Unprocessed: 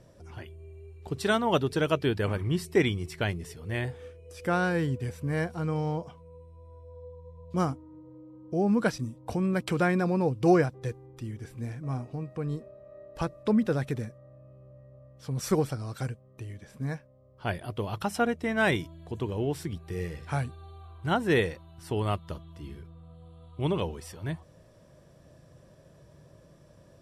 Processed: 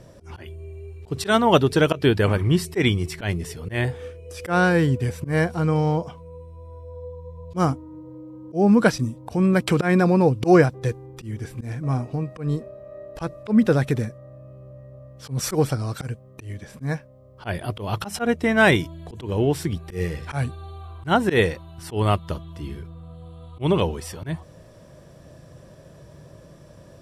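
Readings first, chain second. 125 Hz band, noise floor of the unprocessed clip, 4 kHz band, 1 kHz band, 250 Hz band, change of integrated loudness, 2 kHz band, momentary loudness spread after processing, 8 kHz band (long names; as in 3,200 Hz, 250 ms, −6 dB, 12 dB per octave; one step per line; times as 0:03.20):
+7.5 dB, −57 dBFS, +8.0 dB, +7.0 dB, +7.5 dB, +7.5 dB, +7.5 dB, 21 LU, +8.5 dB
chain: volume swells 115 ms
level +9 dB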